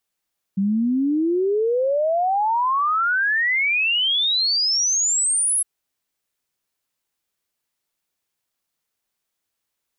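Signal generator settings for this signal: log sweep 190 Hz -> 11 kHz 5.06 s -17 dBFS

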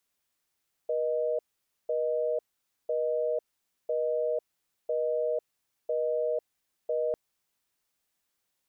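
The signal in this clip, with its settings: call progress tone busy tone, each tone -28.5 dBFS 6.25 s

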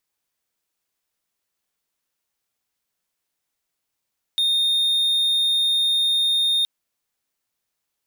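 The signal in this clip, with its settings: tone triangle 3.67 kHz -15 dBFS 2.27 s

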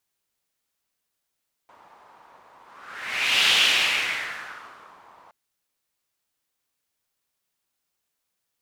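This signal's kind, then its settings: whoosh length 3.62 s, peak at 1.81 s, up 0.98 s, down 1.74 s, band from 960 Hz, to 3 kHz, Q 2.9, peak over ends 33.5 dB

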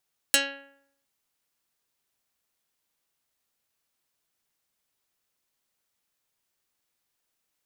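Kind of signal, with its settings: plucked string C#4, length 0.71 s, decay 0.72 s, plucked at 0.23, dark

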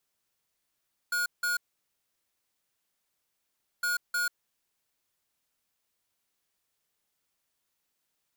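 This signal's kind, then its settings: beep pattern square 1.44 kHz, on 0.14 s, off 0.17 s, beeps 2, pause 2.26 s, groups 2, -28.5 dBFS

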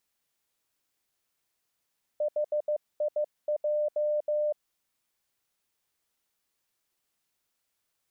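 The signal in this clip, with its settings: Morse "HIJ" 15 wpm 599 Hz -24.5 dBFS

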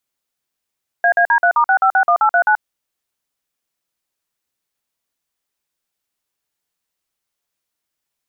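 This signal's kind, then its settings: DTMF "AAD3*6561839", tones 82 ms, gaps 48 ms, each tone -12.5 dBFS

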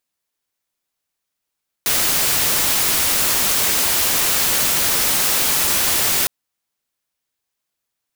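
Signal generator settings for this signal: noise white, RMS -17.5 dBFS 4.41 s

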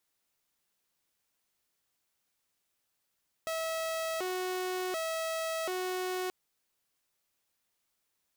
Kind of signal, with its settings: siren hi-lo 368–648 Hz 0.68 per s saw -29.5 dBFS 2.83 s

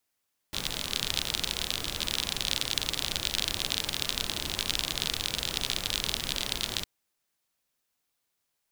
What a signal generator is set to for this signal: rain from filtered ticks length 6.31 s, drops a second 44, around 3.6 kHz, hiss -5 dB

